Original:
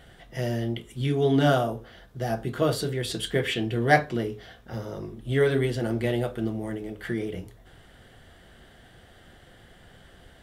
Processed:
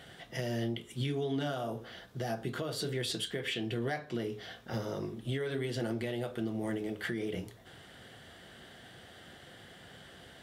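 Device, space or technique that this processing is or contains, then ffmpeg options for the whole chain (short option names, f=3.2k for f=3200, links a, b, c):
broadcast voice chain: -af "highpass=110,deesser=0.55,acompressor=threshold=-27dB:ratio=4,equalizer=f=4.2k:t=o:w=1.9:g=4,alimiter=level_in=1dB:limit=-24dB:level=0:latency=1:release=362,volume=-1dB"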